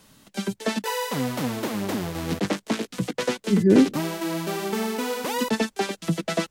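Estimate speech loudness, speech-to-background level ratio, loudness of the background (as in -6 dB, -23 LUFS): -20.0 LUFS, 7.5 dB, -27.5 LUFS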